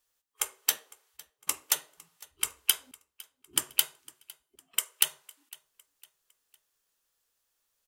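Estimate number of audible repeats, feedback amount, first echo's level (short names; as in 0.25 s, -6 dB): 2, 41%, -23.0 dB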